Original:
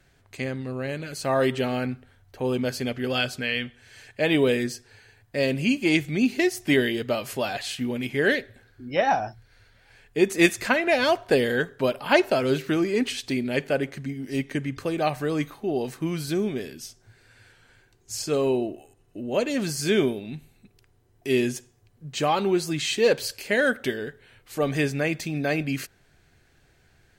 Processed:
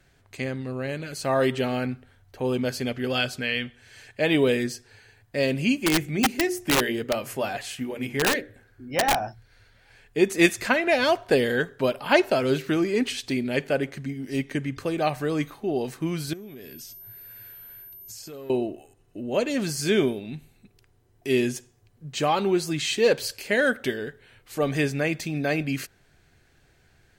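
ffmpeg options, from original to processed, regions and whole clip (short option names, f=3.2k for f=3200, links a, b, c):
-filter_complex "[0:a]asettb=1/sr,asplit=3[a][b][c];[a]atrim=end=5.764[d];[b]atrim=start=5.76:end=9.28,asetpts=PTS-STARTPTS,afade=t=in:d=0.004:c=qsin,afade=t=out:st=3.516:d=0.004:c=qsin,equalizer=f=4k:t=o:w=0.88:g=-7,bandreject=f=60:t=h:w=6,bandreject=f=120:t=h:w=6,bandreject=f=180:t=h:w=6,bandreject=f=240:t=h:w=6,bandreject=f=300:t=h:w=6,bandreject=f=360:t=h:w=6,bandreject=f=420:t=h:w=6,bandreject=f=480:t=h:w=6,bandreject=f=540:t=h:w=6,aeval=exprs='(mod(5.31*val(0)+1,2)-1)/5.31':c=same[e];[c]atrim=start=9.276[f];[d][e]acrossfade=d=0.004:c1=hsin:c2=qsin[g];[g][f]acrossfade=d=0.004:c1=qsin:c2=hsin,asettb=1/sr,asplit=3[h][i][j];[h]atrim=end=16.334[k];[i]atrim=start=16.33:end=18.5,asetpts=PTS-STARTPTS,afade=t=in:d=0.004:c=qsin,afade=t=out:st=2.166:d=0.004:c=qsin,aeval=exprs='val(0)+0.00794*sin(2*PI*13000*n/s)':c=same,volume=19dB,asoftclip=hard,volume=-19dB,acompressor=threshold=-37dB:ratio=16:attack=3.2:release=140:knee=1:detection=peak[l];[j]atrim=start=18.496[m];[k][l]acrossfade=d=0.004:c1=hsin:c2=qsin[n];[n][m]acrossfade=d=0.004:c1=qsin:c2=hsin"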